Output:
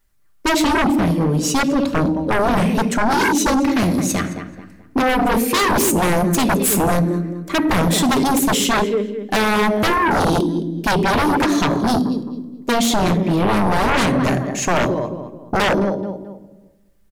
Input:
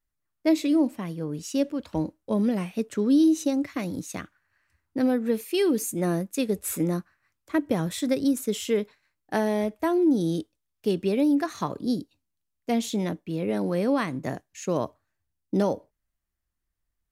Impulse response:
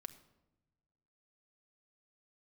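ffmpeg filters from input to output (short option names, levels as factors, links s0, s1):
-filter_complex "[0:a]asplit=2[s0][s1];[s1]adelay=216,lowpass=f=3000:p=1,volume=0.224,asplit=2[s2][s3];[s3]adelay=216,lowpass=f=3000:p=1,volume=0.33,asplit=2[s4][s5];[s5]adelay=216,lowpass=f=3000:p=1,volume=0.33[s6];[s0][s2][s4][s6]amix=inputs=4:normalize=0[s7];[1:a]atrim=start_sample=2205[s8];[s7][s8]afir=irnorm=-1:irlink=0,aeval=exprs='0.178*sin(PI/2*6.31*val(0)/0.178)':c=same,volume=1.26"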